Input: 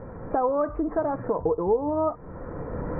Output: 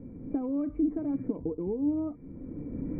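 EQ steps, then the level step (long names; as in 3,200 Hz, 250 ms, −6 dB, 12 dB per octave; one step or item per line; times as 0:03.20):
dynamic equaliser 2,000 Hz, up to +7 dB, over −45 dBFS, Q 1.1
formant resonators in series i
+5.5 dB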